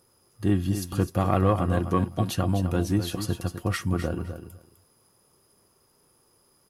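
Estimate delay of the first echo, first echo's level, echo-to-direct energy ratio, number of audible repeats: 254 ms, −10.0 dB, −10.0 dB, 2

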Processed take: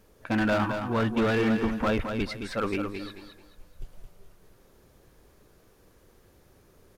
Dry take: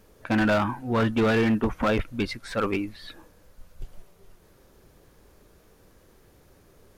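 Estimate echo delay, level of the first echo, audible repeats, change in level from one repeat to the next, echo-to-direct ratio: 218 ms, −7.0 dB, 3, −11.0 dB, −6.5 dB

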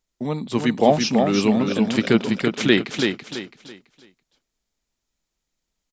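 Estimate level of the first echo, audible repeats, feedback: −5.0 dB, 3, 30%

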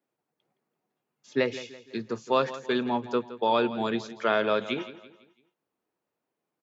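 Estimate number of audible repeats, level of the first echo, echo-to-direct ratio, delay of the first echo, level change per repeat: 3, −15.0 dB, −14.0 dB, 167 ms, −7.5 dB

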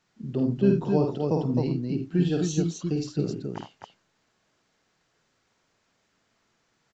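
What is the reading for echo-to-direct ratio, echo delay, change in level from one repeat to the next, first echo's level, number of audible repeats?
−1.0 dB, 50 ms, repeats not evenly spaced, −5.0 dB, 3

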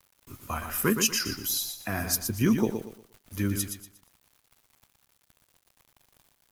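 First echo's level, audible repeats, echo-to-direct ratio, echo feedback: −7.0 dB, 3, −6.5 dB, 30%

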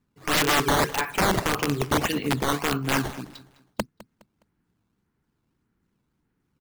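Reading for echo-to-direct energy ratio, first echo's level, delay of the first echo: −18.5 dB, −19.0 dB, 207 ms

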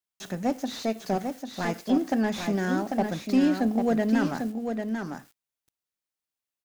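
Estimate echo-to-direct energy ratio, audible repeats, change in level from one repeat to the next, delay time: −6.0 dB, 1, repeats not evenly spaced, 796 ms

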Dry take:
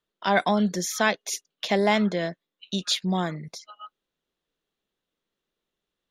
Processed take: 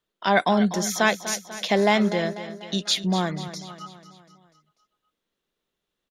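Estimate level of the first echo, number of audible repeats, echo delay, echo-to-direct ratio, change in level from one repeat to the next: −13.0 dB, 4, 246 ms, −11.5 dB, −5.5 dB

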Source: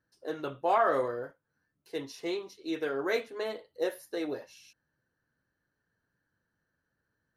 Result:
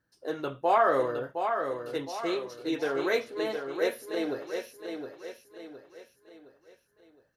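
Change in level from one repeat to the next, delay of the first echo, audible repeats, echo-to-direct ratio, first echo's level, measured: −7.5 dB, 714 ms, 4, −5.5 dB, −6.5 dB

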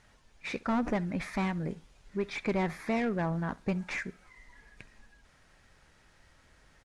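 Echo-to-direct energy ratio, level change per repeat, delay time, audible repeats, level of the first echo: −22.5 dB, −11.0 dB, 67 ms, 2, −23.0 dB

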